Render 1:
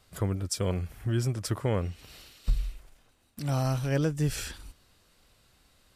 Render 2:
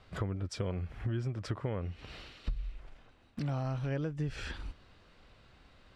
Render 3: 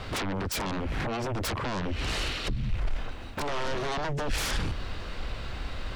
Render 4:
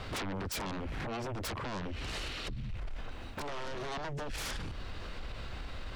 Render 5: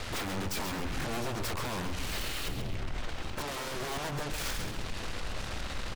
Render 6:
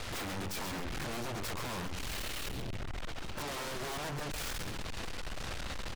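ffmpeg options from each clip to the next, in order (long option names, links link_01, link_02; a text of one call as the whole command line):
ffmpeg -i in.wav -af "lowpass=3000,acompressor=threshold=-38dB:ratio=5,volume=5dB" out.wav
ffmpeg -i in.wav -af "acompressor=threshold=-37dB:ratio=6,aeval=exprs='0.0335*sin(PI/2*6.31*val(0)/0.0335)':channel_layout=same,asubboost=boost=2:cutoff=82,volume=2dB" out.wav
ffmpeg -i in.wav -af "alimiter=level_in=5.5dB:limit=-24dB:level=0:latency=1:release=64,volume=-5.5dB,volume=-3.5dB" out.wav
ffmpeg -i in.wav -af "aeval=exprs='0.0237*(cos(1*acos(clip(val(0)/0.0237,-1,1)))-cos(1*PI/2))+0.00473*(cos(7*acos(clip(val(0)/0.0237,-1,1)))-cos(7*PI/2))+0.00668*(cos(8*acos(clip(val(0)/0.0237,-1,1)))-cos(8*PI/2))':channel_layout=same,aecho=1:1:134|268|402|536:0.398|0.119|0.0358|0.0107,volume=1.5dB" out.wav
ffmpeg -i in.wav -af "volume=35.5dB,asoftclip=hard,volume=-35.5dB" out.wav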